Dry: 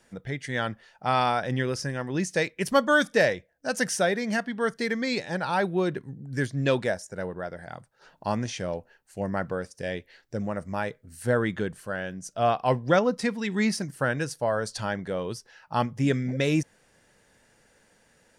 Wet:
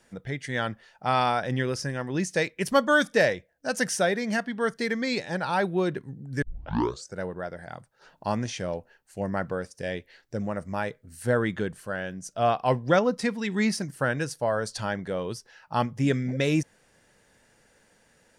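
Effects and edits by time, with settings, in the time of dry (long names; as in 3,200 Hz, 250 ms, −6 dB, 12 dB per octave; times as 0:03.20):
0:06.42: tape start 0.73 s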